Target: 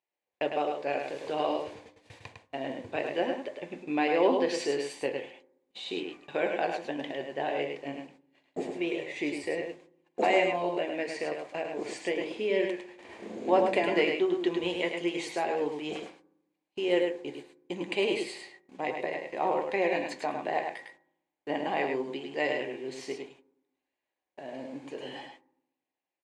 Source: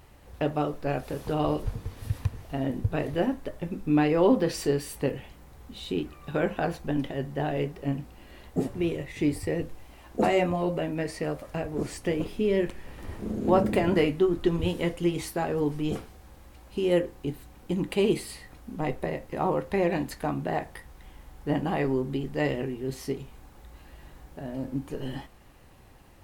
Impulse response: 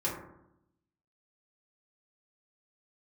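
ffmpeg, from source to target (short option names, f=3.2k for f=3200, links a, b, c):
-filter_complex "[0:a]highpass=470,equalizer=f=1.3k:t=q:w=4:g=-10,equalizer=f=2.3k:t=q:w=4:g=5,equalizer=f=5.5k:t=q:w=4:g=-5,lowpass=f=7.3k:w=0.5412,lowpass=f=7.3k:w=1.3066,agate=range=-33dB:threshold=-49dB:ratio=16:detection=peak,aecho=1:1:104:0.562,asplit=2[a][b];[1:a]atrim=start_sample=2205[c];[b][c]afir=irnorm=-1:irlink=0,volume=-21dB[d];[a][d]amix=inputs=2:normalize=0"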